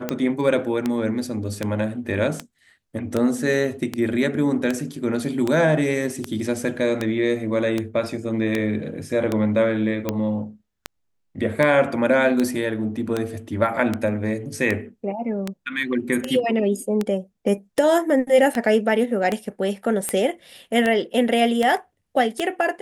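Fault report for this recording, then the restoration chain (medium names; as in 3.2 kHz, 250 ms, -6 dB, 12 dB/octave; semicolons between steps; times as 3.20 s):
tick 78 rpm -9 dBFS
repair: de-click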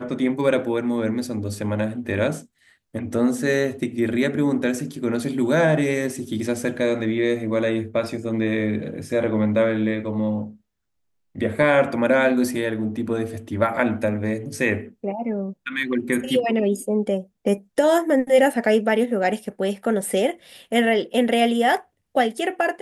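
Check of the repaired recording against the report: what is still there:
nothing left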